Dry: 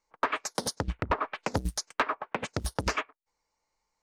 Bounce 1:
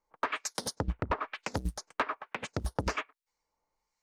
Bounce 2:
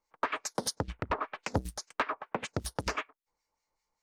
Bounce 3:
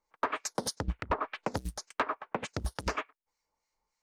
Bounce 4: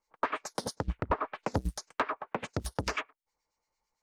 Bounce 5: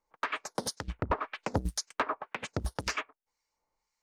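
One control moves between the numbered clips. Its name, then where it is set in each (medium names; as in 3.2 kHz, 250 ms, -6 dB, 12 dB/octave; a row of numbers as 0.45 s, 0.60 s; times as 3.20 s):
harmonic tremolo, rate: 1.1 Hz, 5.1 Hz, 3.4 Hz, 8.9 Hz, 1.9 Hz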